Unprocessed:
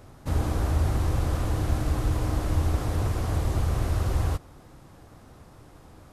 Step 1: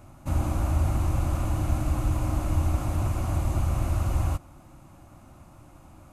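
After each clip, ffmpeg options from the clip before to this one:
-af "superequalizer=7b=0.251:11b=0.501:13b=0.501:14b=0.501"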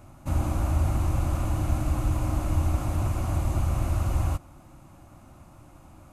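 -af anull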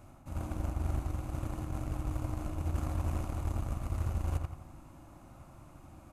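-filter_complex "[0:a]areverse,acompressor=threshold=-32dB:ratio=16,areverse,asplit=2[a][b];[b]adelay=85,lowpass=f=2.7k:p=1,volume=-3dB,asplit=2[c][d];[d]adelay=85,lowpass=f=2.7k:p=1,volume=0.54,asplit=2[e][f];[f]adelay=85,lowpass=f=2.7k:p=1,volume=0.54,asplit=2[g][h];[h]adelay=85,lowpass=f=2.7k:p=1,volume=0.54,asplit=2[i][j];[j]adelay=85,lowpass=f=2.7k:p=1,volume=0.54,asplit=2[k][l];[l]adelay=85,lowpass=f=2.7k:p=1,volume=0.54,asplit=2[m][n];[n]adelay=85,lowpass=f=2.7k:p=1,volume=0.54[o];[a][c][e][g][i][k][m][o]amix=inputs=8:normalize=0,aeval=exprs='0.0531*(cos(1*acos(clip(val(0)/0.0531,-1,1)))-cos(1*PI/2))+0.0075*(cos(3*acos(clip(val(0)/0.0531,-1,1)))-cos(3*PI/2))':c=same"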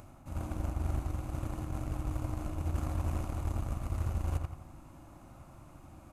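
-af "acompressor=mode=upward:threshold=-49dB:ratio=2.5"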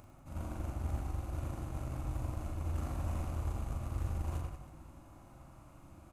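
-af "aecho=1:1:40|100|190|325|527.5:0.631|0.398|0.251|0.158|0.1,volume=-5dB"

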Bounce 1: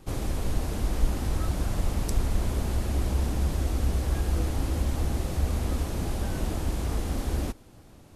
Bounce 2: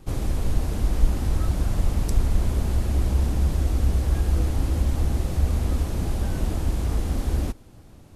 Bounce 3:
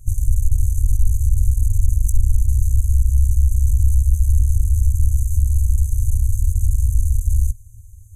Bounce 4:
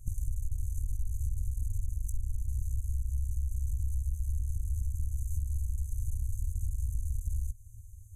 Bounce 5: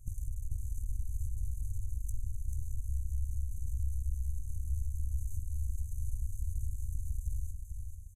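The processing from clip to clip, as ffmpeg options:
-af "lowshelf=f=200:g=5.5"
-af "acontrast=88,aeval=exprs='(tanh(6.31*val(0)+0.75)-tanh(0.75))/6.31':c=same,afftfilt=real='re*(1-between(b*sr/4096,110,6000))':imag='im*(1-between(b*sr/4096,110,6000))':win_size=4096:overlap=0.75,volume=6dB"
-af "acompressor=threshold=-20dB:ratio=6,volume=-7.5dB"
-af "aecho=1:1:439|878|1317|1756|2195:0.473|0.213|0.0958|0.0431|0.0194,volume=-4.5dB"

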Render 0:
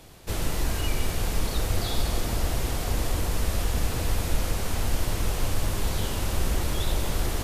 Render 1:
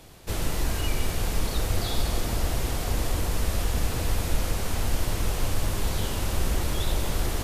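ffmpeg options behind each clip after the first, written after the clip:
-af anull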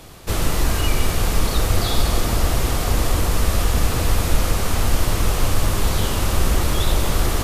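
-af "equalizer=f=1.2k:t=o:w=0.26:g=5,volume=7.5dB"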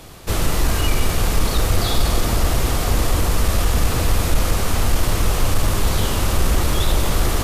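-af "asoftclip=type=tanh:threshold=-6dB,volume=1.5dB"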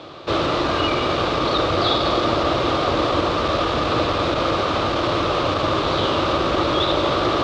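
-af "highpass=150,equalizer=f=200:t=q:w=4:g=-8,equalizer=f=330:t=q:w=4:g=7,equalizer=f=580:t=q:w=4:g=8,equalizer=f=1.2k:t=q:w=4:g=8,equalizer=f=1.9k:t=q:w=4:g=-4,equalizer=f=3.7k:t=q:w=4:g=5,lowpass=f=4.3k:w=0.5412,lowpass=f=4.3k:w=1.3066,volume=2dB"

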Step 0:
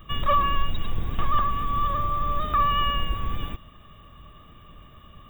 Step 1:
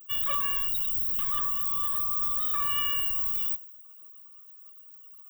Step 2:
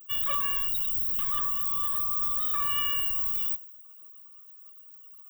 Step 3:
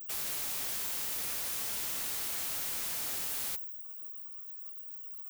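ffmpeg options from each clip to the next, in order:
-af "aemphasis=mode=production:type=riaa,afftdn=nr=19:nf=-38,equalizer=f=750:w=0.59:g=-11.5,volume=-4.5dB"
-af anull
-af "aeval=exprs='(mod(35.5*val(0)+1,2)-1)/35.5':c=same,crystalizer=i=0.5:c=0,asoftclip=type=tanh:threshold=-32.5dB"

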